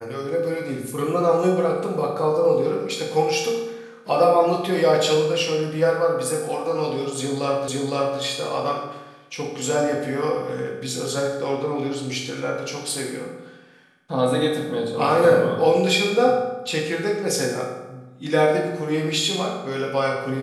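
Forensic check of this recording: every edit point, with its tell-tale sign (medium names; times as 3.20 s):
7.68 s: repeat of the last 0.51 s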